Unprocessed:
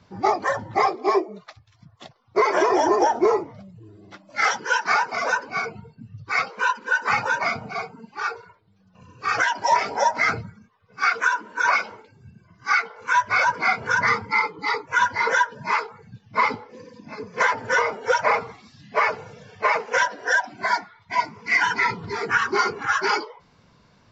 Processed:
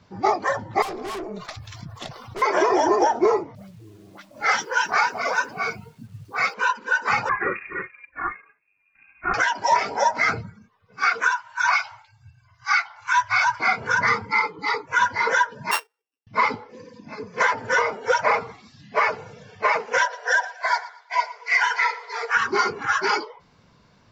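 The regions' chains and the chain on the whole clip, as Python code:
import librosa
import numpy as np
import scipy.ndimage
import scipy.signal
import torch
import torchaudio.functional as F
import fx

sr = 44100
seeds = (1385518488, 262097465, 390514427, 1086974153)

y = fx.chain(x, sr, fx.tube_stage(drive_db=30.0, bias=0.55),
    fx.high_shelf(hz=6800.0, db=6.5),
    fx.env_flatten(amount_pct=70), at=(0.82, 2.42))
y = fx.chain(y, sr, fx.dispersion(late='highs', ms=74.0, hz=950.0),
    fx.quant_dither(seeds[0], bits=10, dither='none'), at=(3.55, 6.54))
y = fx.chain(y, sr, fx.law_mismatch(coded='A'),
    fx.freq_invert(carrier_hz=2600), at=(7.29, 9.34))
y = fx.chain(y, sr, fx.ellip_bandstop(low_hz=120.0, high_hz=750.0, order=3, stop_db=40),
    fx.peak_eq(hz=4300.0, db=3.0, octaves=1.5), at=(11.31, 13.6))
y = fx.chain(y, sr, fx.sample_sort(block=16),
    fx.brickwall_highpass(low_hz=260.0),
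    fx.upward_expand(threshold_db=-42.0, expansion=2.5), at=(15.71, 16.27))
y = fx.chain(y, sr, fx.brickwall_highpass(low_hz=430.0),
    fx.echo_feedback(ms=116, feedback_pct=30, wet_db=-17), at=(20.01, 22.37))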